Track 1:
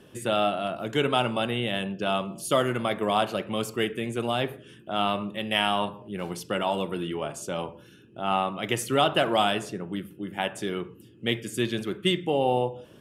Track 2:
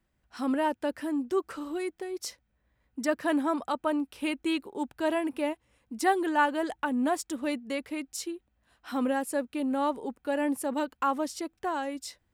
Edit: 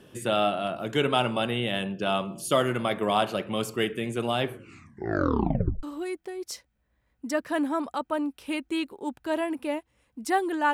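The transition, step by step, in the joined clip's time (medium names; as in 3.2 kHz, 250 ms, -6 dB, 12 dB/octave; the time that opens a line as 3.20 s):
track 1
4.43 s: tape stop 1.40 s
5.83 s: go over to track 2 from 1.57 s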